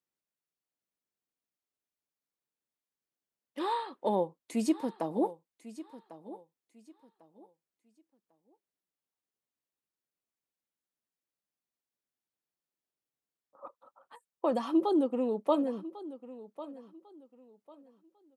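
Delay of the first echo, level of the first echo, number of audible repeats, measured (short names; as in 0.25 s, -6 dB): 1.098 s, -16.0 dB, 2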